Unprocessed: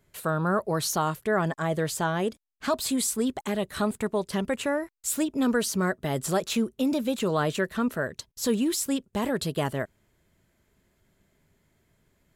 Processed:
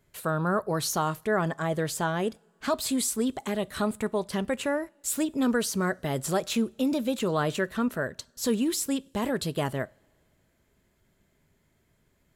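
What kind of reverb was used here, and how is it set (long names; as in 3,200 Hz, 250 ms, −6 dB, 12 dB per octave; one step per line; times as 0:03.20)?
coupled-rooms reverb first 0.35 s, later 2.5 s, from −22 dB, DRR 19.5 dB
level −1 dB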